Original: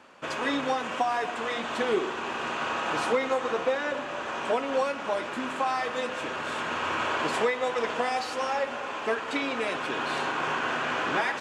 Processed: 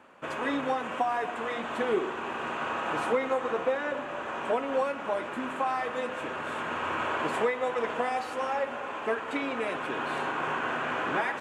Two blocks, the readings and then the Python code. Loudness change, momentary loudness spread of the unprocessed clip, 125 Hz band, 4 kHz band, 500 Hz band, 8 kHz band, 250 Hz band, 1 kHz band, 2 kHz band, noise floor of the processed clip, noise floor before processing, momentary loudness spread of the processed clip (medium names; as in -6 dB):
-2.0 dB, 5 LU, -1.0 dB, -7.0 dB, -1.0 dB, -7.5 dB, -1.0 dB, -1.5 dB, -2.5 dB, -37 dBFS, -35 dBFS, 5 LU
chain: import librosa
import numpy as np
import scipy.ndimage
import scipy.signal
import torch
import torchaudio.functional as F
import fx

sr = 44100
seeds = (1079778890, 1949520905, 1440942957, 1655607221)

y = fx.peak_eq(x, sr, hz=5000.0, db=-11.5, octaves=1.2)
y = F.gain(torch.from_numpy(y), -1.0).numpy()